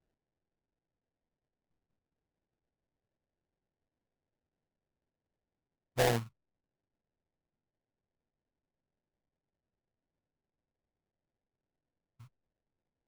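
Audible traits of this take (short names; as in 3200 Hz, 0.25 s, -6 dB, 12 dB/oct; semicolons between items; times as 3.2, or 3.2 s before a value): aliases and images of a low sample rate 1200 Hz, jitter 20%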